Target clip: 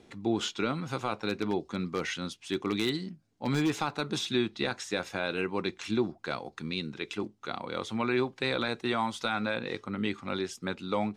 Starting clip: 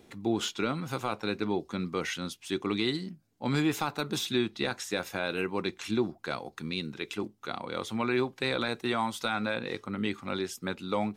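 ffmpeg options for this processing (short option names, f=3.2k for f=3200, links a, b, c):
-filter_complex "[0:a]lowpass=7.7k,asettb=1/sr,asplit=3[a][b][c];[a]atrim=end=1.294[d];[b]atrim=start=1.29:end=3.73,asetpts=PTS-STARTPTS,afade=t=in:d=0.004:c=qsin,afade=t=out:st=2.436:d=0.004:c=qsin,aeval=exprs='0.1*(abs(mod(val(0)/0.1+3,4)-2)-1)':c=same[e];[c]atrim=start=3.726[f];[d][e]acrossfade=d=0.004:c1=hsin:c2=qsin[g];[g][f]acrossfade=d=0.004:c1=qsin:c2=hsin"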